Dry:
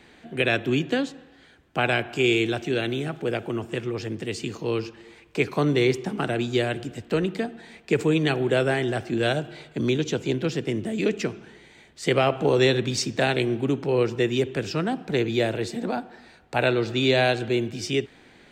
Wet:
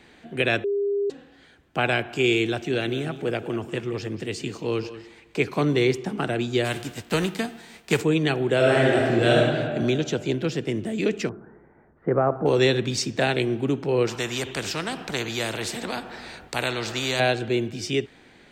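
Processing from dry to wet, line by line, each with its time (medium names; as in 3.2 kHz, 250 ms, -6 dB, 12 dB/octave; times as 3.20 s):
0.64–1.10 s: bleep 403 Hz -21 dBFS
2.55–5.77 s: delay 186 ms -14 dB
6.64–8.00 s: formants flattened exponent 0.6
8.55–9.46 s: reverb throw, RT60 1.9 s, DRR -3.5 dB
11.29–12.46 s: steep low-pass 1.5 kHz
14.07–17.20 s: spectrum-flattening compressor 2:1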